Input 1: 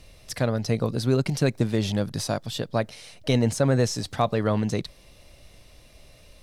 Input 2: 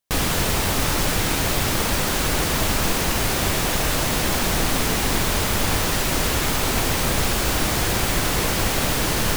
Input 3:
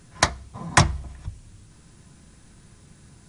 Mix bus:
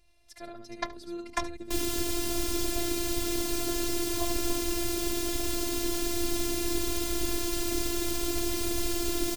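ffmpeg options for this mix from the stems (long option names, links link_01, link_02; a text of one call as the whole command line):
ffmpeg -i stem1.wav -i stem2.wav -i stem3.wav -filter_complex "[0:a]volume=-13.5dB,asplit=2[link_01][link_02];[link_02]volume=-4dB[link_03];[1:a]acrossover=split=230|3000[link_04][link_05][link_06];[link_05]acompressor=threshold=-35dB:ratio=6[link_07];[link_04][link_07][link_06]amix=inputs=3:normalize=0,equalizer=frequency=350:width_type=o:width=1.4:gain=12.5,adelay=1600,volume=-5dB[link_08];[2:a]afwtdn=0.0355,highshelf=frequency=5100:gain=-7,adelay=600,volume=-10dB,asplit=2[link_09][link_10];[link_10]volume=-19dB[link_11];[link_03][link_11]amix=inputs=2:normalize=0,aecho=0:1:73:1[link_12];[link_01][link_08][link_09][link_12]amix=inputs=4:normalize=0,afftfilt=real='hypot(re,im)*cos(PI*b)':imag='0':win_size=512:overlap=0.75" out.wav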